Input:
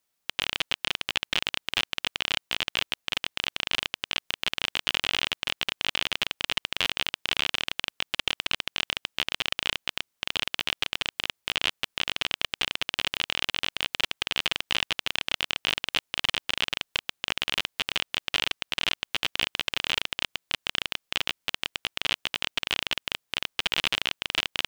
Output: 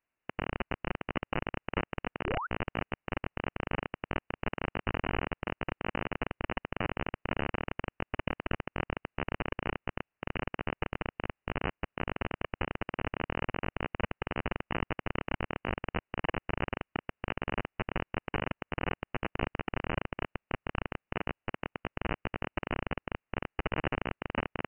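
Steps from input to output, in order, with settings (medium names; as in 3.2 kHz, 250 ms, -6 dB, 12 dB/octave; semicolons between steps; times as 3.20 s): frequency inversion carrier 2.9 kHz; painted sound rise, 2.26–2.47 s, 320–1600 Hz -33 dBFS; trim -2.5 dB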